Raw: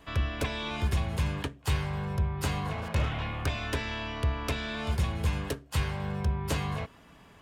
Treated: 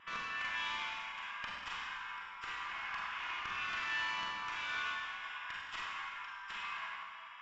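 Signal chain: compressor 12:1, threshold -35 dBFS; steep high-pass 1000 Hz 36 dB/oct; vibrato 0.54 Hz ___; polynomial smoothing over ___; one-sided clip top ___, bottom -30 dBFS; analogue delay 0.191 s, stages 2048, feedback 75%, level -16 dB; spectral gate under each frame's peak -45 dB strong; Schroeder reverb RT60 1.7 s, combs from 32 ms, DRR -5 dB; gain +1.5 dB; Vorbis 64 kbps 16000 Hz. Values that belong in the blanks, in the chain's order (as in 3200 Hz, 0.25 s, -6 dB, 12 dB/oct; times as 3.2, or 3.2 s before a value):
5.9 cents, 25 samples, -43 dBFS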